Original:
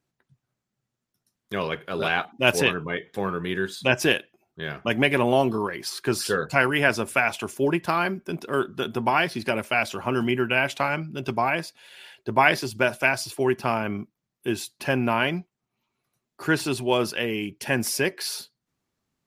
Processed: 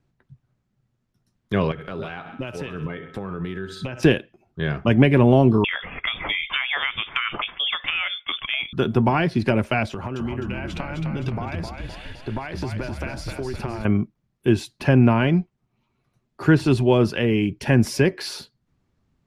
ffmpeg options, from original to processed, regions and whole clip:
-filter_complex "[0:a]asettb=1/sr,asplit=3[s0][s1][s2];[s0]atrim=end=1.714[s3];[s1]atrim=start=1.71:end=4.03,asetpts=PTS-STARTPTS,afade=t=in:d=0.004:c=qsin,afade=t=out:st=2.316:d=0.004:c=qsin,aecho=1:1:65|130|195|260:0.112|0.0527|0.0248|0.0116,atrim=end_sample=102312,acompressor=threshold=0.02:ratio=10:attack=3.2:release=140:knee=1:detection=peak,aeval=exprs='val(0)+0.00224*sin(2*PI*1300*n/s)':c=same[s4];[s2]atrim=start=4.026[s5];[s3][s4]acrossfade=d=0.004:c1=hsin:c2=qsin[s6];[s6][s5]acrossfade=d=0.004:c1=qsin:c2=hsin,asettb=1/sr,asplit=3[s7][s8][s9];[s7]atrim=end=5.644[s10];[s8]atrim=start=5.64:end=8.73,asetpts=PTS-STARTPTS,afade=t=in:d=0.004:c=qsin,afade=t=out:st=3.086:d=0.004:c=qsin,equalizer=f=1400:w=0.45:g=11,acompressor=threshold=0.112:ratio=4:attack=3.2:release=140:knee=1:detection=peak,lowpass=f=3100:t=q:w=0.5098,lowpass=f=3100:t=q:w=0.6013,lowpass=f=3100:t=q:w=0.9,lowpass=f=3100:t=q:w=2.563,afreqshift=-3700[s11];[s9]atrim=start=8.726[s12];[s10][s11]acrossfade=d=0.004:c1=hsin:c2=qsin[s13];[s13][s12]acrossfade=d=0.004:c1=qsin:c2=hsin,asettb=1/sr,asplit=3[s14][s15][s16];[s14]atrim=end=9.904[s17];[s15]atrim=start=9.9:end=13.85,asetpts=PTS-STARTPTS,afade=t=in:d=0.004:c=qsin,afade=t=out:st=3.946:d=0.004:c=qsin,acompressor=threshold=0.0224:ratio=12:attack=3.2:release=140:knee=1:detection=peak,asplit=7[s18][s19][s20][s21][s22][s23][s24];[s19]adelay=258,afreqshift=-35,volume=0.531[s25];[s20]adelay=516,afreqshift=-70,volume=0.266[s26];[s21]adelay=774,afreqshift=-105,volume=0.133[s27];[s22]adelay=1032,afreqshift=-140,volume=0.0661[s28];[s23]adelay=1290,afreqshift=-175,volume=0.0331[s29];[s24]adelay=1548,afreqshift=-210,volume=0.0166[s30];[s18][s25][s26][s27][s28][s29][s30]amix=inputs=7:normalize=0,atrim=end_sample=174195[s31];[s16]atrim=start=13.846[s32];[s17][s31]acrossfade=d=0.004:c1=hsin:c2=qsin[s33];[s33][s32]acrossfade=d=0.004:c1=qsin:c2=hsin,aemphasis=mode=reproduction:type=bsi,acrossover=split=450[s34][s35];[s35]acompressor=threshold=0.0316:ratio=2[s36];[s34][s36]amix=inputs=2:normalize=0,volume=1.78"

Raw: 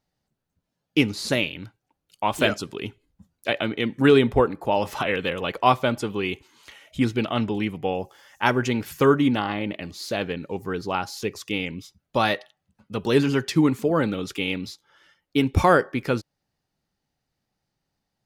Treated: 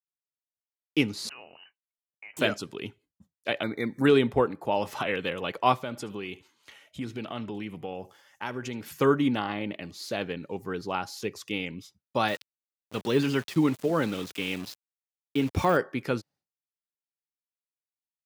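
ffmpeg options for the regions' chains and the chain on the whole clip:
-filter_complex "[0:a]asettb=1/sr,asplit=3[s0][s1][s2];[s0]atrim=end=1.294[s3];[s1]atrim=start=1.29:end=2.37,asetpts=PTS-STARTPTS,afade=t=in:d=0.004:c=qsin,afade=t=out:st=1.076:d=0.004:c=qsin,highpass=f=470:p=1,lowpass=f=2600:t=q:w=0.5098,lowpass=f=2600:t=q:w=0.6013,lowpass=f=2600:t=q:w=0.9,lowpass=f=2600:t=q:w=2.563,afreqshift=-3100,acompressor=threshold=0.00708:ratio=3:attack=3.2:release=140:knee=1:detection=peak[s4];[s2]atrim=start=2.366[s5];[s3][s4]acrossfade=d=0.004:c1=hsin:c2=qsin[s6];[s6][s5]acrossfade=d=0.004:c1=qsin:c2=hsin,asettb=1/sr,asplit=3[s7][s8][s9];[s7]atrim=end=3.634[s10];[s8]atrim=start=3.63:end=4.06,asetpts=PTS-STARTPTS,afade=t=in:d=0.004:c=qsin,afade=t=out:st=0.426:d=0.004:c=qsin,highshelf=f=10000:g=10.5,acompressor=mode=upward:threshold=0.0282:ratio=2.5:attack=3.2:release=140:knee=2.83:detection=peak,asuperstop=centerf=2900:order=20:qfactor=2.4[s11];[s9]atrim=start=4.056[s12];[s10][s11]acrossfade=d=0.004:c1=hsin:c2=qsin[s13];[s13][s12]acrossfade=d=0.004:c1=qsin:c2=hsin,asettb=1/sr,asplit=3[s14][s15][s16];[s14]atrim=end=5.754[s17];[s15]atrim=start=5.75:end=8.92,asetpts=PTS-STARTPTS,afade=t=in:d=0.004:c=qsin,afade=t=out:st=3.166:d=0.004:c=qsin,acompressor=threshold=0.0355:ratio=2.5:attack=3.2:release=140:knee=1:detection=peak,aecho=1:1:75:0.1,atrim=end_sample=139797[s18];[s16]atrim=start=8.916[s19];[s17][s18]acrossfade=d=0.004:c1=hsin:c2=qsin[s20];[s20][s19]acrossfade=d=0.004:c1=qsin:c2=hsin,asettb=1/sr,asplit=3[s21][s22][s23];[s21]atrim=end=12.284[s24];[s22]atrim=start=12.28:end=15.77,asetpts=PTS-STARTPTS,afade=t=in:d=0.004:c=qsin,afade=t=out:st=3.486:d=0.004:c=qsin,deesser=0.85,equalizer=f=3700:t=o:w=1.8:g=4.5,aeval=exprs='val(0)*gte(abs(val(0)),0.02)':c=same[s25];[s23]atrim=start=15.766[s26];[s24][s25]acrossfade=d=0.004:c1=hsin:c2=qsin[s27];[s27][s26]acrossfade=d=0.004:c1=qsin:c2=hsin,agate=range=0.0224:threshold=0.00398:ratio=3:detection=peak,highpass=97,volume=0.596"

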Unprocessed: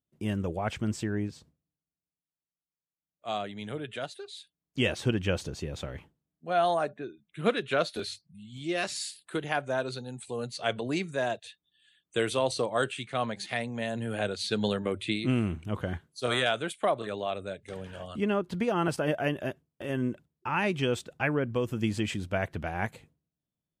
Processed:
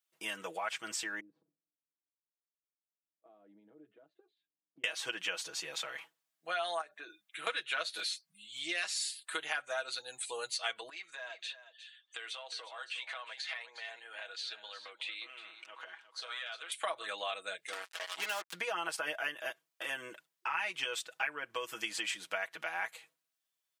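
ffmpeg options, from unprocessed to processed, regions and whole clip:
-filter_complex "[0:a]asettb=1/sr,asplit=3[s0][s1][s2];[s0]atrim=end=1.204[s3];[s1]atrim=start=1.2:end=4.84,asetpts=PTS-STARTPTS,afade=t=in:d=0.004:c=qsin,afade=t=out:st=3.636:d=0.004:c=qsin,acompressor=threshold=0.00794:ratio=16:attack=3.2:release=140:knee=1:detection=peak,lowpass=f=300:t=q:w=2.1[s4];[s2]atrim=start=4.836[s5];[s3][s4]acrossfade=d=0.004:c1=hsin:c2=qsin[s6];[s6][s5]acrossfade=d=0.004:c1=qsin:c2=hsin,asettb=1/sr,asplit=3[s7][s8][s9];[s7]atrim=end=6.814[s10];[s8]atrim=start=6.81:end=7.47,asetpts=PTS-STARTPTS,afade=t=in:d=0.004:c=qsin,afade=t=out:st=0.656:d=0.004:c=qsin,highpass=180,acompressor=threshold=0.0141:ratio=12:attack=3.2:release=140:knee=1:detection=peak[s11];[s9]atrim=start=7.466[s12];[s10][s11]acrossfade=d=0.004:c1=hsin:c2=qsin[s13];[s13][s12]acrossfade=d=0.004:c1=qsin:c2=hsin,asettb=1/sr,asplit=3[s14][s15][s16];[s14]atrim=end=10.894[s17];[s15]atrim=start=10.89:end=16.72,asetpts=PTS-STARTPTS,afade=t=in:d=0.004:c=qsin,afade=t=out:st=5.826:d=0.004:c=qsin,acompressor=threshold=0.00891:ratio=12:attack=3.2:release=140:knee=1:detection=peak,highpass=460,lowpass=4600,aecho=1:1:360:0.237,atrim=end_sample=257103[s18];[s16]atrim=start=16.716[s19];[s17][s18]acrossfade=d=0.004:c1=hsin:c2=qsin[s20];[s20][s19]acrossfade=d=0.004:c1=qsin:c2=hsin,asettb=1/sr,asplit=3[s21][s22][s23];[s21]atrim=end=17.724[s24];[s22]atrim=start=17.72:end=18.53,asetpts=PTS-STARTPTS,afade=t=in:d=0.004:c=qsin,afade=t=out:st=0.806:d=0.004:c=qsin,highpass=290,acrusher=bits=5:mix=0:aa=0.5[s25];[s23]atrim=start=18.526[s26];[s24][s25]acrossfade=d=0.004:c1=hsin:c2=qsin[s27];[s27][s26]acrossfade=d=0.004:c1=qsin:c2=hsin,highpass=1200,aecho=1:1:6.2:0.76,acompressor=threshold=0.00794:ratio=3,volume=2.11"

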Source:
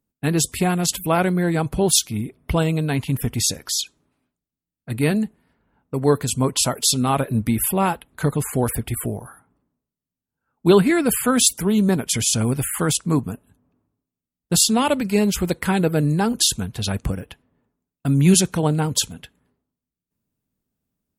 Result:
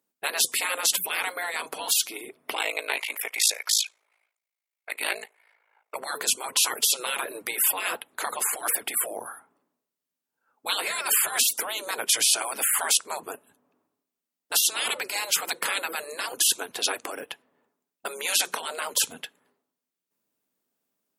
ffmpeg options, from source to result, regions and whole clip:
-filter_complex "[0:a]asettb=1/sr,asplit=3[s0][s1][s2];[s0]atrim=end=2.544[s3];[s1]atrim=start=2.54:end=5.96,asetpts=PTS-STARTPTS,afade=t=in:d=0.004:c=qsin,afade=t=out:st=3.416:d=0.004:c=qsin,highpass=f=530:w=0.5412,highpass=f=530:w=1.3066,equalizer=f=2200:w=4.5:g=14.5,aeval=exprs='val(0)*sin(2*PI*27*n/s)':c=same[s4];[s2]atrim=start=5.956[s5];[s3][s4]acrossfade=d=0.004:c1=hsin:c2=qsin[s6];[s6][s5]acrossfade=d=0.004:c1=qsin:c2=hsin,asettb=1/sr,asplit=3[s7][s8][s9];[s7]atrim=end=11.904[s10];[s8]atrim=start=11.9:end=12.33,asetpts=PTS-STARTPTS,afade=t=in:d=0.004:c=qsin,afade=t=out:st=0.426:d=0.004:c=qsin,highpass=f=180:w=0.5412,highpass=f=180:w=1.3066,bandreject=f=410:w=8.5[s11];[s9]atrim=start=12.326[s12];[s10][s11]acrossfade=d=0.004:c1=hsin:c2=qsin[s13];[s13][s12]acrossfade=d=0.004:c1=qsin:c2=hsin,afftfilt=real='re*lt(hypot(re,im),0.158)':imag='im*lt(hypot(re,im),0.158)':win_size=1024:overlap=0.75,highpass=440,volume=1.68"

